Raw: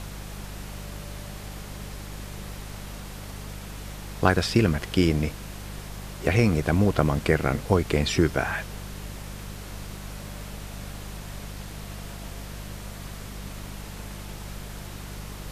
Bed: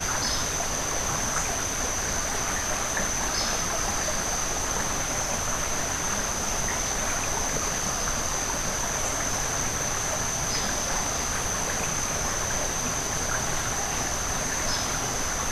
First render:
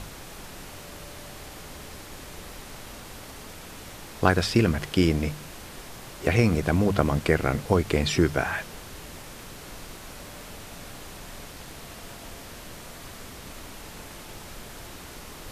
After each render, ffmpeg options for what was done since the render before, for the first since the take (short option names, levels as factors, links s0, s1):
-af "bandreject=f=50:t=h:w=4,bandreject=f=100:t=h:w=4,bandreject=f=150:t=h:w=4,bandreject=f=200:t=h:w=4"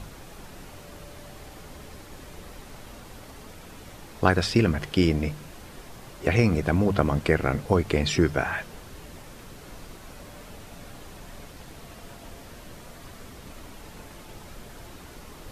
-af "afftdn=nr=6:nf=-43"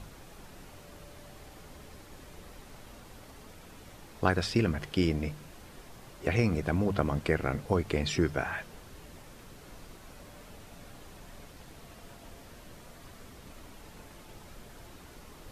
-af "volume=0.501"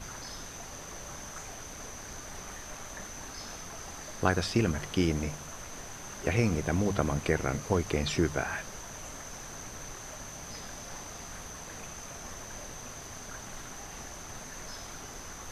-filter_complex "[1:a]volume=0.15[s0];[0:a][s0]amix=inputs=2:normalize=0"